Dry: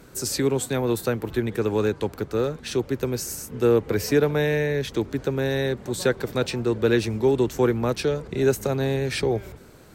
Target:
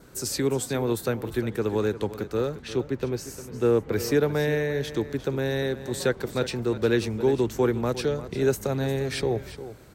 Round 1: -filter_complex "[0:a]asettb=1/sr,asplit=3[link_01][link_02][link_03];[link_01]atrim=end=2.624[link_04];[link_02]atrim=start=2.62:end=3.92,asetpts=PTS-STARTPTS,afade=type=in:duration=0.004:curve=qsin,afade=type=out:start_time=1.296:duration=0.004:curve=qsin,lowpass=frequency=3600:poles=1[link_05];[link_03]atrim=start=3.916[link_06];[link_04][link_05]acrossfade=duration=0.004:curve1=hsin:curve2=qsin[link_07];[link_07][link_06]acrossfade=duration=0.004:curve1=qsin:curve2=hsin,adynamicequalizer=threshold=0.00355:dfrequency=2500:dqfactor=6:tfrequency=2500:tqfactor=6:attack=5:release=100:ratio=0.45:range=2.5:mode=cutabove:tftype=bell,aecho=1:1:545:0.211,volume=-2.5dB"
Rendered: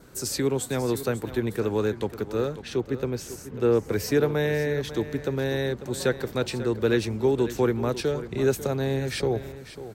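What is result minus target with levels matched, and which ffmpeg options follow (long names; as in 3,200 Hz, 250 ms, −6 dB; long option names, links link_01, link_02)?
echo 192 ms late
-filter_complex "[0:a]asettb=1/sr,asplit=3[link_01][link_02][link_03];[link_01]atrim=end=2.624[link_04];[link_02]atrim=start=2.62:end=3.92,asetpts=PTS-STARTPTS,afade=type=in:duration=0.004:curve=qsin,afade=type=out:start_time=1.296:duration=0.004:curve=qsin,lowpass=frequency=3600:poles=1[link_05];[link_03]atrim=start=3.916[link_06];[link_04][link_05]acrossfade=duration=0.004:curve1=hsin:curve2=qsin[link_07];[link_07][link_06]acrossfade=duration=0.004:curve1=qsin:curve2=hsin,adynamicequalizer=threshold=0.00355:dfrequency=2500:dqfactor=6:tfrequency=2500:tqfactor=6:attack=5:release=100:ratio=0.45:range=2.5:mode=cutabove:tftype=bell,aecho=1:1:353:0.211,volume=-2.5dB"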